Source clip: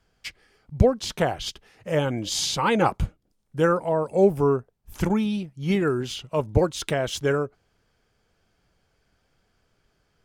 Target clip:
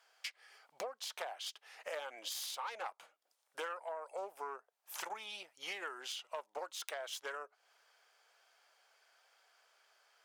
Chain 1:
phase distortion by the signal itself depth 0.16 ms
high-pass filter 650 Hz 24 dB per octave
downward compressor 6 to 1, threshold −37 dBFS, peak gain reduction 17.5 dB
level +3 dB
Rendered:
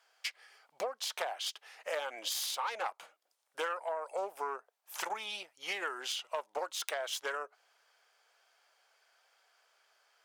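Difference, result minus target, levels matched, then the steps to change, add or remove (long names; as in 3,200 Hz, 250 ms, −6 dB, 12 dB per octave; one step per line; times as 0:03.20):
downward compressor: peak gain reduction −6 dB
change: downward compressor 6 to 1, threshold −44.5 dBFS, peak gain reduction 24 dB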